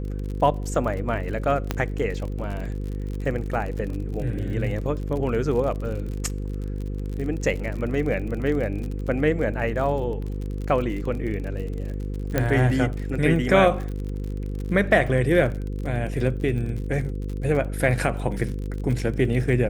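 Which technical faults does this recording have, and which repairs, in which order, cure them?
buzz 50 Hz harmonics 10 -29 dBFS
crackle 47 per s -31 dBFS
1.71 s: pop -9 dBFS
12.38 s: pop -8 dBFS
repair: de-click; de-hum 50 Hz, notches 10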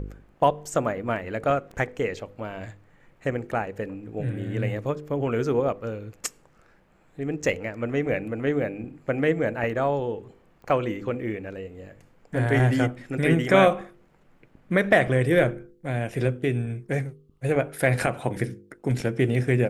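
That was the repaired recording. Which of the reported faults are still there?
1.71 s: pop
12.38 s: pop

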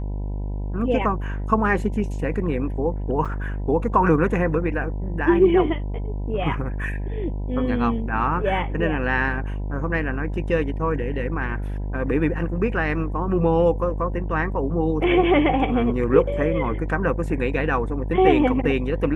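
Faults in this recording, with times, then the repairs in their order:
buzz 50 Hz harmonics 20 -27 dBFS
3.25–3.26 s: dropout 6.2 ms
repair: de-hum 50 Hz, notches 20; interpolate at 3.25 s, 6.2 ms

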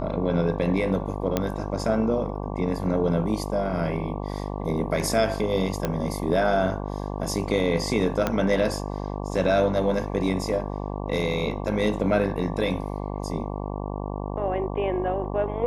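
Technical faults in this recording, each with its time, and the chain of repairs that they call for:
buzz 50 Hz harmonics 23 -31 dBFS
1.37 s: pop -9 dBFS
5.85 s: pop -11 dBFS
8.27 s: pop -9 dBFS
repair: de-click; de-hum 50 Hz, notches 23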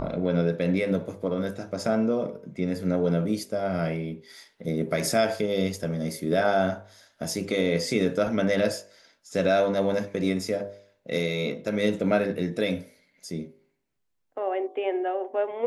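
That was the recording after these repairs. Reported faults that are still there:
8.27 s: pop

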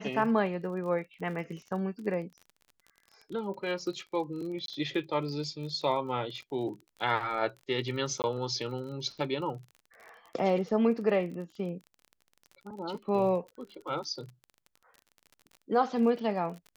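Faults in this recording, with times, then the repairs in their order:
crackle 34 per s -40 dBFS
4.66–4.68 s: dropout 22 ms
8.22–8.24 s: dropout 19 ms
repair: de-click; interpolate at 4.66 s, 22 ms; interpolate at 8.22 s, 19 ms

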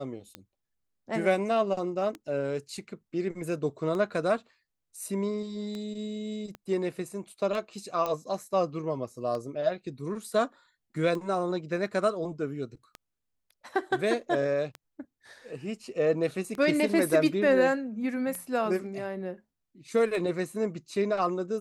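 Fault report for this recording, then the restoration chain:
tick 33 1/3 rpm -23 dBFS
6.55 s: pop -27 dBFS
8.06 s: pop -18 dBFS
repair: de-click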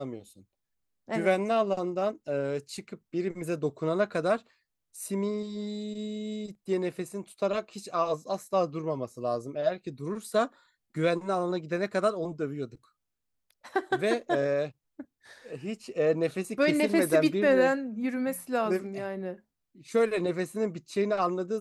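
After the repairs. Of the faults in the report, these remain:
6.55 s: pop
8.06 s: pop

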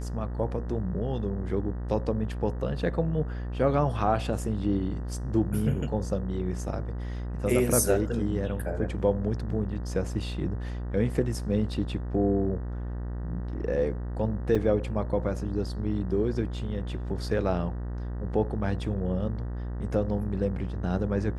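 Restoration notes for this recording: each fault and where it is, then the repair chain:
buzz 60 Hz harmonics 32 -33 dBFS
14.55 s: dropout 3.7 ms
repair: de-hum 60 Hz, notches 32; interpolate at 14.55 s, 3.7 ms

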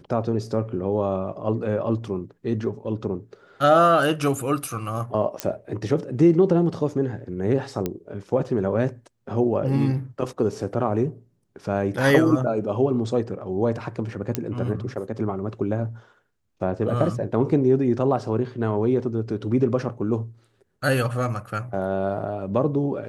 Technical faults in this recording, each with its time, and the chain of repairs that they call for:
5.40 s: pop -8 dBFS
7.86 s: pop -12 dBFS
14.35 s: pop -8 dBFS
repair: de-click

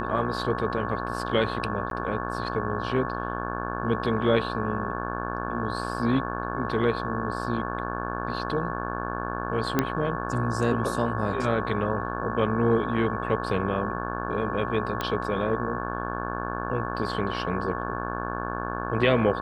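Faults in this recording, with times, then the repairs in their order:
buzz 60 Hz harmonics 29 -32 dBFS
whine 1.1 kHz -34 dBFS
1.90–1.91 s: dropout 12 ms
9.79 s: pop -8 dBFS
15.01 s: pop -13 dBFS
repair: de-click; band-stop 1.1 kHz, Q 30; de-hum 60 Hz, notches 29; interpolate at 1.90 s, 12 ms

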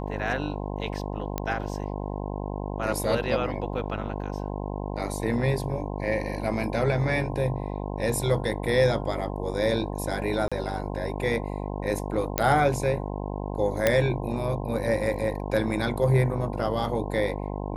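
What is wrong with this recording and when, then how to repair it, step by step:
buzz 50 Hz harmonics 21 -32 dBFS
1.38 s: pop -13 dBFS
10.48–10.52 s: dropout 36 ms
12.38 s: pop -5 dBFS
13.87 s: pop -6 dBFS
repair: de-click; de-hum 50 Hz, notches 21; interpolate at 10.48 s, 36 ms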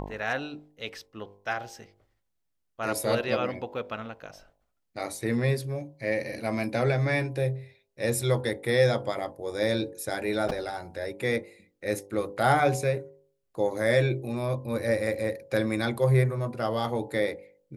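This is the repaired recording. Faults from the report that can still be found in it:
nothing left

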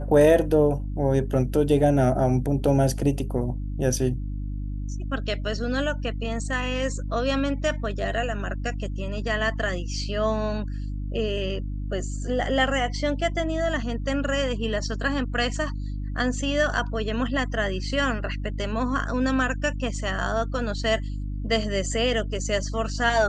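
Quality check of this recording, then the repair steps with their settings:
hum 50 Hz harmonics 6 -30 dBFS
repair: de-hum 50 Hz, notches 6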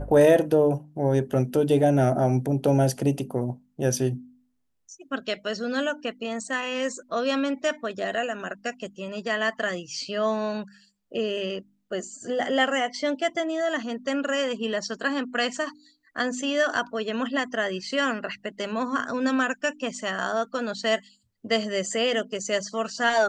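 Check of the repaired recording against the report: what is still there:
nothing left

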